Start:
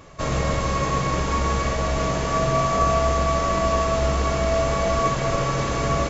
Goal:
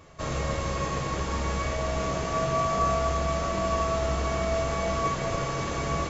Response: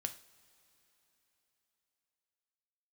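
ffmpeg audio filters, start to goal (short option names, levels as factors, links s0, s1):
-filter_complex "[0:a]bandreject=f=60:t=h:w=6,bandreject=f=120:t=h:w=6,bandreject=f=180:t=h:w=6[s0];[1:a]atrim=start_sample=2205[s1];[s0][s1]afir=irnorm=-1:irlink=0,volume=0.596"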